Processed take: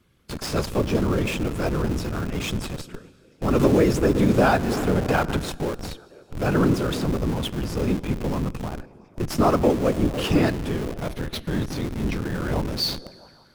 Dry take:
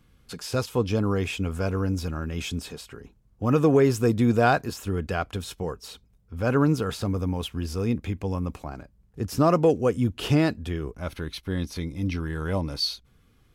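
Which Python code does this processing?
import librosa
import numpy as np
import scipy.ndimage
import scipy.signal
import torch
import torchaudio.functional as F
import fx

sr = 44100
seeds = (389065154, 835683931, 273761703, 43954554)

p1 = scipy.signal.sosfilt(scipy.signal.butter(4, 83.0, 'highpass', fs=sr, output='sos'), x)
p2 = p1 + fx.echo_stepped(p1, sr, ms=167, hz=170.0, octaves=0.7, feedback_pct=70, wet_db=-10.0, dry=0)
p3 = fx.whisperise(p2, sr, seeds[0])
p4 = fx.rev_plate(p3, sr, seeds[1], rt60_s=2.8, hf_ratio=0.9, predelay_ms=0, drr_db=17.0)
p5 = fx.schmitt(p4, sr, flips_db=-33.0)
p6 = p4 + (p5 * librosa.db_to_amplitude(-7.0))
y = fx.band_squash(p6, sr, depth_pct=70, at=(3.59, 5.37))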